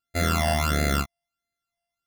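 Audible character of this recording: a buzz of ramps at a fixed pitch in blocks of 64 samples; phasing stages 12, 1.5 Hz, lowest notch 400–1000 Hz

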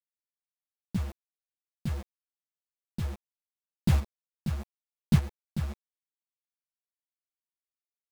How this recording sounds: a quantiser's noise floor 6-bit, dither none; chopped level 0.84 Hz, depth 65%, duty 35%; a shimmering, thickened sound

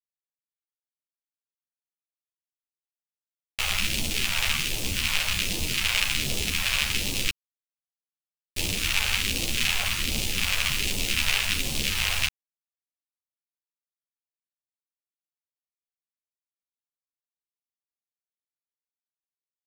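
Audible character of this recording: phasing stages 2, 1.3 Hz, lowest notch 280–1400 Hz; a quantiser's noise floor 6-bit, dither none; a shimmering, thickened sound

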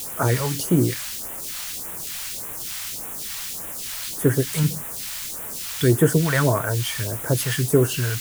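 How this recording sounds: a quantiser's noise floor 6-bit, dither triangular; phasing stages 2, 1.7 Hz, lowest notch 310–4400 Hz

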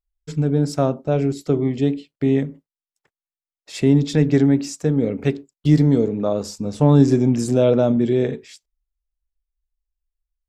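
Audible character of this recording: noise floor -95 dBFS; spectral tilt -7.5 dB/oct

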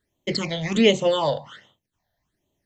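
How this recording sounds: phasing stages 8, 1.3 Hz, lowest notch 330–1600 Hz

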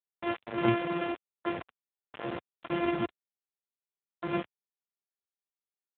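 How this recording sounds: a buzz of ramps at a fixed pitch in blocks of 128 samples; tremolo triangle 3.5 Hz, depth 55%; a quantiser's noise floor 6-bit, dither none; AMR-NB

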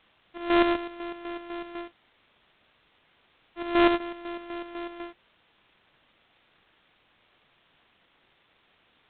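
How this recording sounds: a buzz of ramps at a fixed pitch in blocks of 128 samples; chopped level 4 Hz, depth 60%, duty 50%; a quantiser's noise floor 10-bit, dither triangular; G.726

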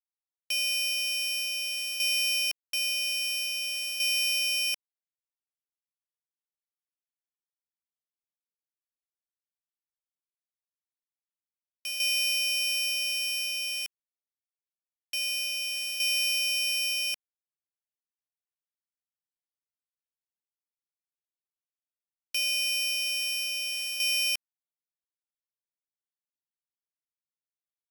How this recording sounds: a buzz of ramps at a fixed pitch in blocks of 8 samples; tremolo saw down 0.5 Hz, depth 60%; a quantiser's noise floor 8-bit, dither none; AAC

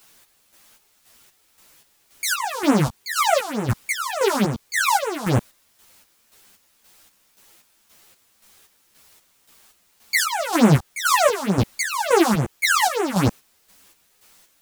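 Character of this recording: phasing stages 4, 3.4 Hz, lowest notch 320–4700 Hz; a quantiser's noise floor 10-bit, dither triangular; chopped level 1.9 Hz, depth 60%, duty 45%; a shimmering, thickened sound

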